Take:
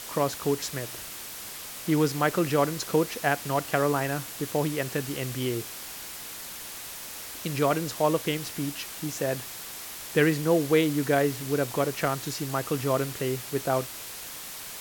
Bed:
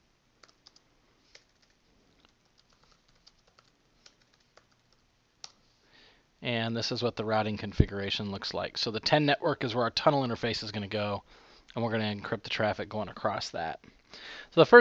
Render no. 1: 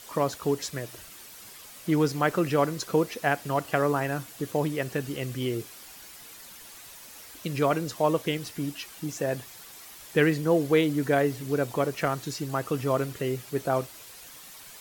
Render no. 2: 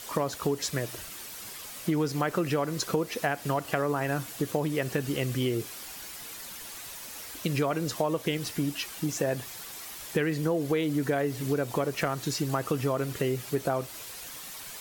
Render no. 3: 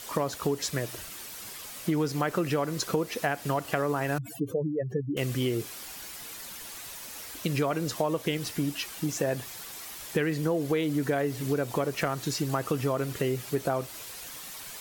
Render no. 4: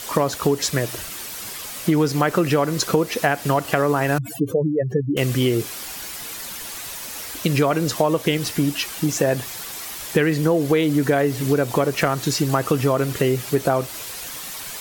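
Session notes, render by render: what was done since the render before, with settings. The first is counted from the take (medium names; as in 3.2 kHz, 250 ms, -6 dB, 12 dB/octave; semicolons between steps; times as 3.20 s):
noise reduction 9 dB, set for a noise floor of -40 dBFS
in parallel at -3 dB: peak limiter -18 dBFS, peak gain reduction 9.5 dB; on the sum: compression, threshold -24 dBFS, peak gain reduction 9.5 dB
4.18–5.17 s: spectral contrast enhancement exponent 3.3
trim +9 dB; peak limiter -2 dBFS, peak gain reduction 1 dB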